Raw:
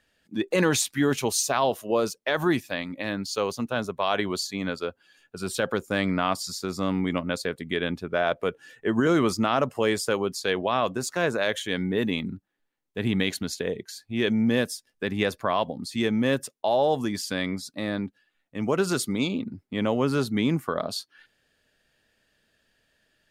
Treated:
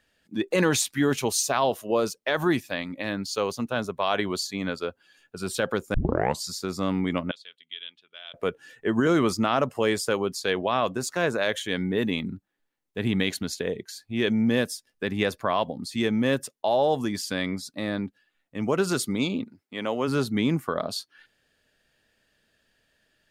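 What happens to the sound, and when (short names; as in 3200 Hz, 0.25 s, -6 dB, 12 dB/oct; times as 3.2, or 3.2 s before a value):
5.94 tape start 0.48 s
7.31–8.34 band-pass 3200 Hz, Q 6.4
19.44–20.07 HPF 1200 Hz -> 320 Hz 6 dB/oct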